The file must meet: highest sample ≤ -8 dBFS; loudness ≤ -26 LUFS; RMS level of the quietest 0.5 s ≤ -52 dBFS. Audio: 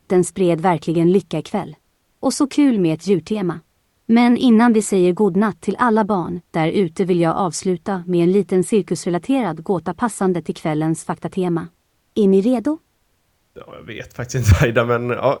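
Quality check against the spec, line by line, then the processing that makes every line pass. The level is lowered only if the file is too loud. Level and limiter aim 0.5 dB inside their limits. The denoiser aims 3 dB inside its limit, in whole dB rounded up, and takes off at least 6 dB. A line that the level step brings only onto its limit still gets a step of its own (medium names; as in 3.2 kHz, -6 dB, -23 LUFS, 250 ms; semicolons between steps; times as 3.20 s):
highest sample -2.5 dBFS: fail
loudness -18.0 LUFS: fail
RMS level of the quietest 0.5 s -64 dBFS: pass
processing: trim -8.5 dB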